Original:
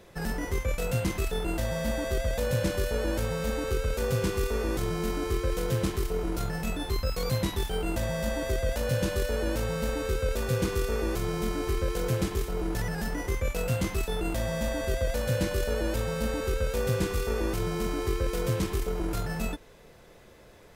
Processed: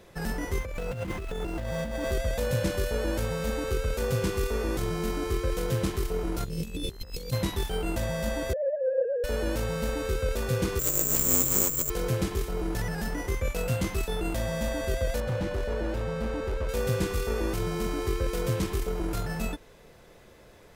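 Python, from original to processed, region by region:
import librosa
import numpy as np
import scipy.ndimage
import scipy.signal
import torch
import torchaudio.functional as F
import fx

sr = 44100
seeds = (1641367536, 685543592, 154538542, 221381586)

y = fx.chain(x, sr, fx.median_filter(points=9),
    fx.over_compress(threshold_db=-32.0, ratio=-1.0), at=(0.6, 2.12))
y = fx.cheby2_bandstop(y, sr, low_hz=740.0, high_hz=1700.0, order=4, stop_db=40, at=(6.44, 7.31), fade=0.02)
y = fx.over_compress(y, sr, threshold_db=-35.0, ratio=-0.5, at=(6.44, 7.31), fade=0.02)
y = fx.dmg_buzz(y, sr, base_hz=60.0, harmonics=34, level_db=-59.0, tilt_db=-2, odd_only=False, at=(6.44, 7.31), fade=0.02)
y = fx.chain(y, sr, fx.sine_speech(),
    fx.lowpass(hz=1100.0, slope=24), at=(8.53, 9.24))
y = fx.chain(y, sr, fx.over_compress(threshold_db=-30.0, ratio=-0.5),
    fx.resample_bad(factor=6, down='none', up='zero_stuff'),
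    fx.ring_mod(carrier_hz=92.0), at=(10.79, 11.9))
y = fx.chain(y, sr, fx.lowpass(hz=2000.0, slope=6),
    fx.clip_hard(threshold_db=-25.0), at=(15.2, 16.69))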